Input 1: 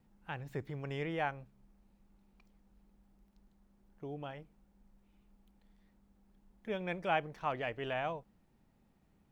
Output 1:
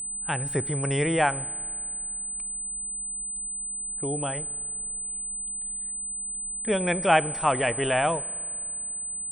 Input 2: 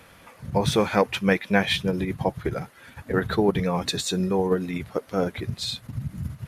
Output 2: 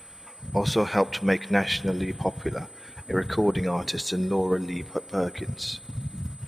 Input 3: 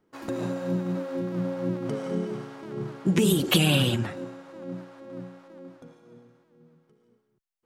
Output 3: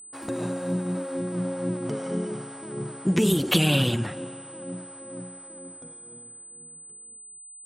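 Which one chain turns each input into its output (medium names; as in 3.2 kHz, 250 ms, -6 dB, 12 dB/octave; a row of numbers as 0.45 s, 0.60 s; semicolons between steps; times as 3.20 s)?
spring tank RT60 2.5 s, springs 36 ms, chirp 45 ms, DRR 19 dB; whistle 8.1 kHz -43 dBFS; normalise loudness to -27 LUFS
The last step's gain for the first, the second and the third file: +12.5 dB, -2.0 dB, 0.0 dB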